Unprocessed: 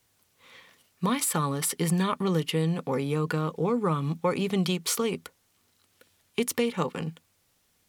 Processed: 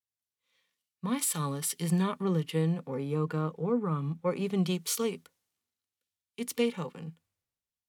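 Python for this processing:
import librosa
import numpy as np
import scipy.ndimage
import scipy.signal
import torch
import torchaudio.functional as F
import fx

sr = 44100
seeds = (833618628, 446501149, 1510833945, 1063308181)

y = fx.hpss(x, sr, part='percussive', gain_db=-8)
y = fx.band_widen(y, sr, depth_pct=70)
y = y * 10.0 ** (-2.5 / 20.0)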